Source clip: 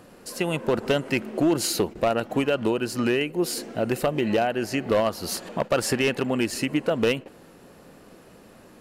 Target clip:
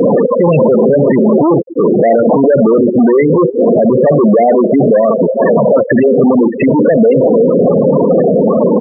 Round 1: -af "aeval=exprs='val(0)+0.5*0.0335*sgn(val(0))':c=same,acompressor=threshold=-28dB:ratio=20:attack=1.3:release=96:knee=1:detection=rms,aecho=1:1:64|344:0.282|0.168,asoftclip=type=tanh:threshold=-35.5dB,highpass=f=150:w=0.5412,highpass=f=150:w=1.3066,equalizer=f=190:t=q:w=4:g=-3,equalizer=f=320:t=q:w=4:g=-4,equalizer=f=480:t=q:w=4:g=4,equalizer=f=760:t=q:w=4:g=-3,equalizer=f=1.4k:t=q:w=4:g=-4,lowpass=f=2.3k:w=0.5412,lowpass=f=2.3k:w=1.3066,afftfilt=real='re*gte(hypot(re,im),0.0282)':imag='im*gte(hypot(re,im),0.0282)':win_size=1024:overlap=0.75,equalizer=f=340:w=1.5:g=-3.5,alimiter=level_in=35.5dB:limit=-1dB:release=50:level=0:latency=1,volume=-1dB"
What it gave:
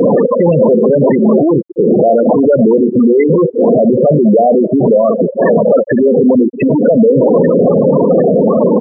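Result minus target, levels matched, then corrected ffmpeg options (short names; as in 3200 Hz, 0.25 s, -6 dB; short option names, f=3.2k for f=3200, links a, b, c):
compressor: peak gain reduction +13.5 dB
-af "aeval=exprs='val(0)+0.5*0.0335*sgn(val(0))':c=same,aecho=1:1:64|344:0.282|0.168,asoftclip=type=tanh:threshold=-35.5dB,highpass=f=150:w=0.5412,highpass=f=150:w=1.3066,equalizer=f=190:t=q:w=4:g=-3,equalizer=f=320:t=q:w=4:g=-4,equalizer=f=480:t=q:w=4:g=4,equalizer=f=760:t=q:w=4:g=-3,equalizer=f=1.4k:t=q:w=4:g=-4,lowpass=f=2.3k:w=0.5412,lowpass=f=2.3k:w=1.3066,afftfilt=real='re*gte(hypot(re,im),0.0282)':imag='im*gte(hypot(re,im),0.0282)':win_size=1024:overlap=0.75,equalizer=f=340:w=1.5:g=-3.5,alimiter=level_in=35.5dB:limit=-1dB:release=50:level=0:latency=1,volume=-1dB"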